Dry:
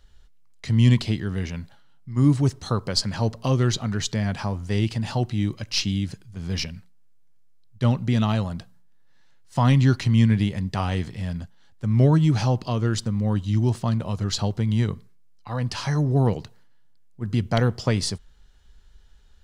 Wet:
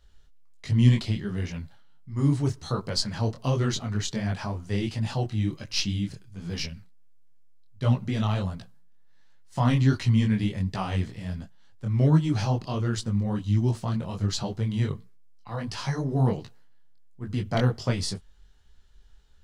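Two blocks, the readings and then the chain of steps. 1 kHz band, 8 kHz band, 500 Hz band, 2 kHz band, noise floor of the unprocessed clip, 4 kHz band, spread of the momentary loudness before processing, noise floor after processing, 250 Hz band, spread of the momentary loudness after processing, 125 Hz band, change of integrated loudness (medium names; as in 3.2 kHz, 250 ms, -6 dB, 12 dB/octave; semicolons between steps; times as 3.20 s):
-3.5 dB, -3.5 dB, -4.0 dB, -3.5 dB, -51 dBFS, -3.5 dB, 13 LU, -53 dBFS, -3.5 dB, 14 LU, -3.5 dB, -3.5 dB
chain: detune thickener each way 48 cents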